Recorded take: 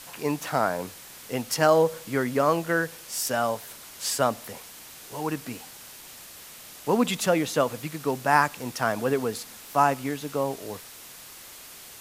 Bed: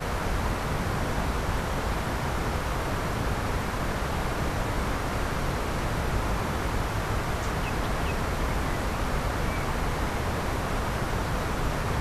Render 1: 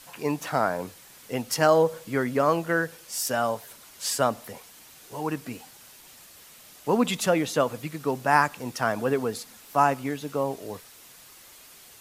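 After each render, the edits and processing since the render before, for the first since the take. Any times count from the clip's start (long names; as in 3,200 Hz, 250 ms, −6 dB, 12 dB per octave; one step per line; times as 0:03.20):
broadband denoise 6 dB, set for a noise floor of −45 dBFS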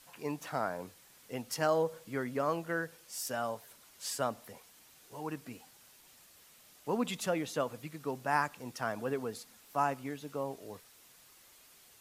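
level −10 dB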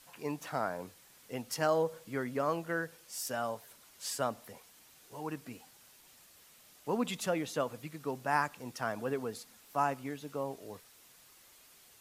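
no processing that can be heard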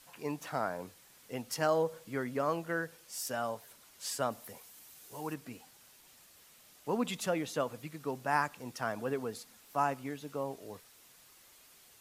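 0:04.30–0:05.33: high-shelf EQ 9,100 Hz → 5,900 Hz +8.5 dB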